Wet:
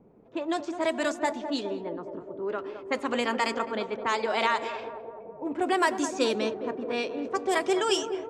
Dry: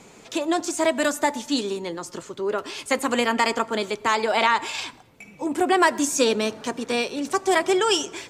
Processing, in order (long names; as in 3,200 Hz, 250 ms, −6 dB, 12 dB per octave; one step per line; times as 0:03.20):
low-pass that shuts in the quiet parts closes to 500 Hz, open at −15.5 dBFS
feedback echo with a band-pass in the loop 210 ms, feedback 79%, band-pass 460 Hz, level −8 dB
level −6 dB